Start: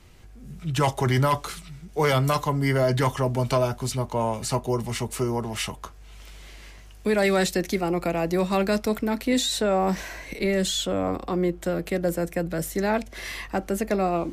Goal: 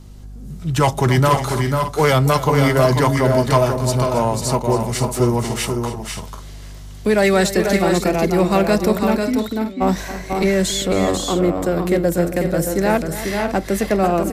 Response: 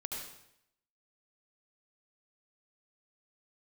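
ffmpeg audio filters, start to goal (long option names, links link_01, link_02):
-filter_complex "[0:a]aeval=exprs='val(0)+0.00562*(sin(2*PI*50*n/s)+sin(2*PI*2*50*n/s)/2+sin(2*PI*3*50*n/s)/3+sin(2*PI*4*50*n/s)/4+sin(2*PI*5*50*n/s)/5)':channel_layout=same,asplit=3[link_01][link_02][link_03];[link_01]afade=type=out:start_time=9.19:duration=0.02[link_04];[link_02]asplit=3[link_05][link_06][link_07];[link_05]bandpass=frequency=270:width_type=q:width=8,volume=0dB[link_08];[link_06]bandpass=frequency=2290:width_type=q:width=8,volume=-6dB[link_09];[link_07]bandpass=frequency=3010:width_type=q:width=8,volume=-9dB[link_10];[link_08][link_09][link_10]amix=inputs=3:normalize=0,afade=type=in:start_time=9.19:duration=0.02,afade=type=out:start_time=9.8:duration=0.02[link_11];[link_03]afade=type=in:start_time=9.8:duration=0.02[link_12];[link_04][link_11][link_12]amix=inputs=3:normalize=0,aecho=1:1:274|493|543:0.2|0.562|0.266,acrossover=split=2900[link_13][link_14];[link_13]adynamicsmooth=sensitivity=5:basefreq=1500[link_15];[link_15][link_14]amix=inputs=2:normalize=0,volume=6.5dB"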